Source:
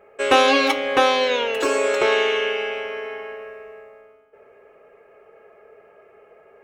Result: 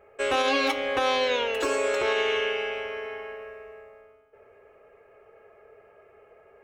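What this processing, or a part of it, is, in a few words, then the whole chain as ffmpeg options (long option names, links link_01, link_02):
car stereo with a boomy subwoofer: -af "lowshelf=frequency=130:width_type=q:width=1.5:gain=6.5,alimiter=limit=-11dB:level=0:latency=1:release=99,volume=-4dB"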